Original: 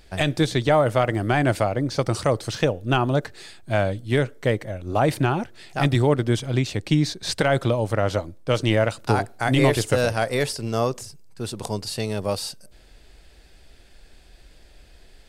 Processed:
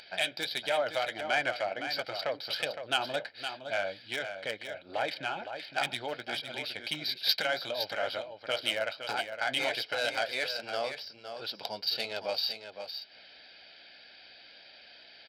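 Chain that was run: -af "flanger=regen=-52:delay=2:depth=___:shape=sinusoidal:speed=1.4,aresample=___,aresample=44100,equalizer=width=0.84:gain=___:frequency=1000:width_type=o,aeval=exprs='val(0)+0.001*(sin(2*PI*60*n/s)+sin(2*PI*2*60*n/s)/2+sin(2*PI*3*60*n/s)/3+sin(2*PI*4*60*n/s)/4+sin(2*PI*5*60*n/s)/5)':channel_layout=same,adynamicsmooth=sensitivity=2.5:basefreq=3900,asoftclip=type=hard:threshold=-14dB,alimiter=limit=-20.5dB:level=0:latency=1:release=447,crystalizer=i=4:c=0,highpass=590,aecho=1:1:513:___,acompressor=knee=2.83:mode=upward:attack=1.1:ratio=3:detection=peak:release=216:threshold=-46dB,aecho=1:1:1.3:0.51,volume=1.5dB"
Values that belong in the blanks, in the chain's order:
9, 11025, -8.5, 0.376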